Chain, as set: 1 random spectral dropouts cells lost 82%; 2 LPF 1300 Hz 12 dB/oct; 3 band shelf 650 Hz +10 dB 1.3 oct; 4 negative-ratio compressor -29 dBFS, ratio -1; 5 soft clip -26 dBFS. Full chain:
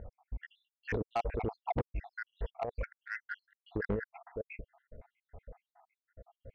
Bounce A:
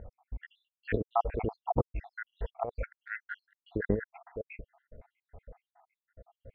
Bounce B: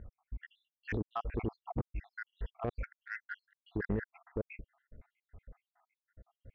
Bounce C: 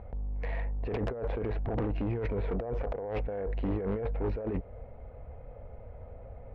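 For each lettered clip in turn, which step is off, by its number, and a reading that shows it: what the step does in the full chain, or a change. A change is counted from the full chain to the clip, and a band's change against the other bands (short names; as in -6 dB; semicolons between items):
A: 5, distortion -9 dB; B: 3, 250 Hz band +5.5 dB; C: 1, 2 kHz band -11.5 dB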